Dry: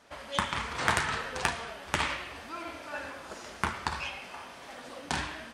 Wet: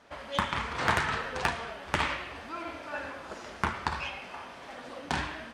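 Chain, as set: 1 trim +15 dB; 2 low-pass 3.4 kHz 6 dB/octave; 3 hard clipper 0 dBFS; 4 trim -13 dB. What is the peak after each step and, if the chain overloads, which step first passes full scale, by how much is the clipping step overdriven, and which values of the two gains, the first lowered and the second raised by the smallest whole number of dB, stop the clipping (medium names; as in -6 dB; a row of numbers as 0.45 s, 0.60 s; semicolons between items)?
+9.0 dBFS, +6.5 dBFS, 0.0 dBFS, -13.0 dBFS; step 1, 6.5 dB; step 1 +8 dB, step 4 -6 dB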